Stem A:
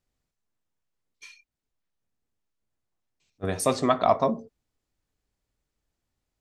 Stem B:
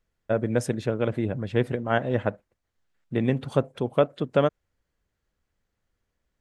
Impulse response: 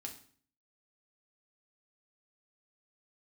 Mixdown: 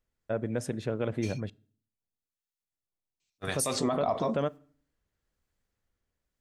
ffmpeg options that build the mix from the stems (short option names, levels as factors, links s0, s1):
-filter_complex "[0:a]agate=range=0.251:threshold=0.00224:ratio=16:detection=peak,highshelf=f=3300:g=9,acrossover=split=1000[s0][s1];[s0]aeval=exprs='val(0)*(1-0.7/2+0.7/2*cos(2*PI*1*n/s))':c=same[s2];[s1]aeval=exprs='val(0)*(1-0.7/2-0.7/2*cos(2*PI*1*n/s))':c=same[s3];[s2][s3]amix=inputs=2:normalize=0,volume=1.19[s4];[1:a]dynaudnorm=f=180:g=7:m=1.41,volume=0.422,asplit=3[s5][s6][s7];[s5]atrim=end=1.5,asetpts=PTS-STARTPTS,afade=t=out:st=1.496:d=0.004:c=hsin[s8];[s6]atrim=start=1.5:end=3.47,asetpts=PTS-STARTPTS,volume=0[s9];[s7]atrim=start=3.47,asetpts=PTS-STARTPTS,afade=t=in:d=0.004:c=hsin[s10];[s8][s9][s10]concat=n=3:v=0:a=1,asplit=2[s11][s12];[s12]volume=0.178[s13];[2:a]atrim=start_sample=2205[s14];[s13][s14]afir=irnorm=-1:irlink=0[s15];[s4][s11][s15]amix=inputs=3:normalize=0,alimiter=limit=0.112:level=0:latency=1:release=50"